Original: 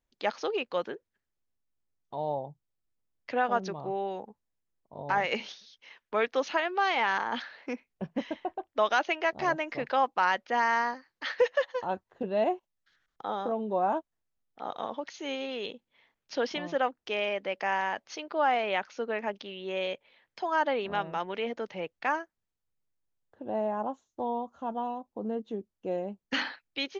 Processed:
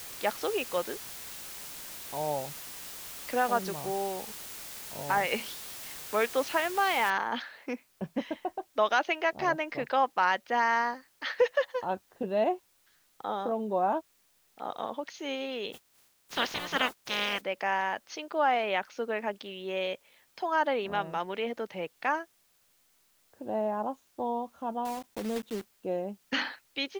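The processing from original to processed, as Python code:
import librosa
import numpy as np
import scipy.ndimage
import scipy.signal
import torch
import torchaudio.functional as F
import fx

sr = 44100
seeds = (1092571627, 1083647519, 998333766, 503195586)

y = fx.noise_floor_step(x, sr, seeds[0], at_s=7.1, before_db=-43, after_db=-68, tilt_db=0.0)
y = fx.spec_clip(y, sr, under_db=29, at=(15.72, 17.4), fade=0.02)
y = fx.block_float(y, sr, bits=3, at=(24.85, 25.73))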